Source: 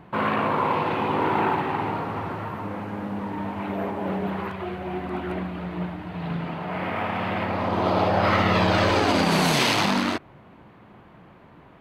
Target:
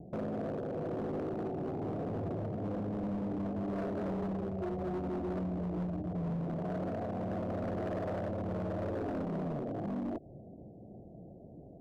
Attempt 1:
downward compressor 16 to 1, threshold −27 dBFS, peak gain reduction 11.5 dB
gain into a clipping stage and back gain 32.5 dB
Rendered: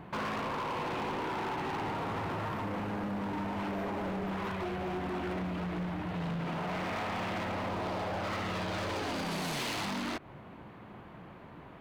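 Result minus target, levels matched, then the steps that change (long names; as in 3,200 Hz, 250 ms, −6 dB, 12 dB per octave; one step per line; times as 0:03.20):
1,000 Hz band +7.0 dB
add after downward compressor: Butterworth low-pass 710 Hz 72 dB per octave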